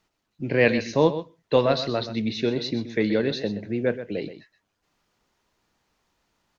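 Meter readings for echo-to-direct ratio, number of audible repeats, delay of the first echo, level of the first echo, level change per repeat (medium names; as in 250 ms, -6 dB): -12.0 dB, 1, 126 ms, -12.0 dB, no regular repeats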